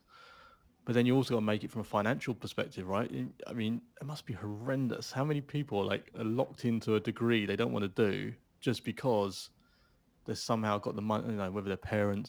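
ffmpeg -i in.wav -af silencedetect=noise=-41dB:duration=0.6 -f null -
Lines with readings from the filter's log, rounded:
silence_start: 0.00
silence_end: 0.87 | silence_duration: 0.87
silence_start: 9.45
silence_end: 10.28 | silence_duration: 0.83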